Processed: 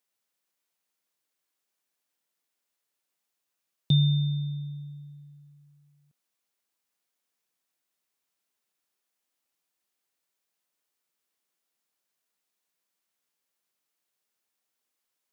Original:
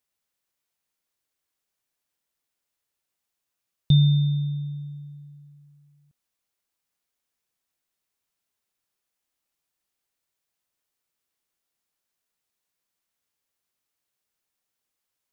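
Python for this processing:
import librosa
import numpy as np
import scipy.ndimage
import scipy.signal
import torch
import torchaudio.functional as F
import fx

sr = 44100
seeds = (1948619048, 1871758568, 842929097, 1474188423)

y = scipy.signal.sosfilt(scipy.signal.butter(2, 170.0, 'highpass', fs=sr, output='sos'), x)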